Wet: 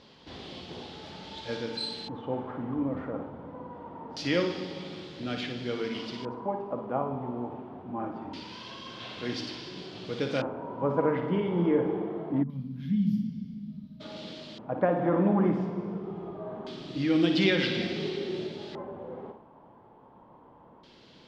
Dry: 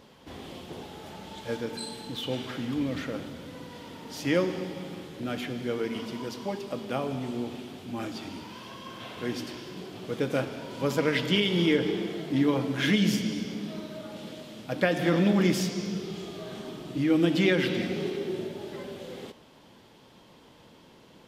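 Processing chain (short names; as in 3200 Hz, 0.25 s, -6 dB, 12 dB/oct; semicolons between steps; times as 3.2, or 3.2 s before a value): flutter echo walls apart 9.8 m, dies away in 0.43 s; LFO low-pass square 0.24 Hz 960–4500 Hz; spectral gain 12.43–14.01, 260–11000 Hz -29 dB; gain -2.5 dB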